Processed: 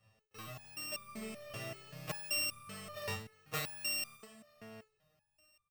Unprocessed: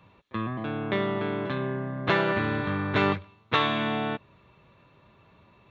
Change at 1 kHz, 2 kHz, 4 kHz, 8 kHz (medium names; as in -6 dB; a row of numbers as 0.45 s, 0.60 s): -20.5 dB, -13.5 dB, -7.0 dB, no reading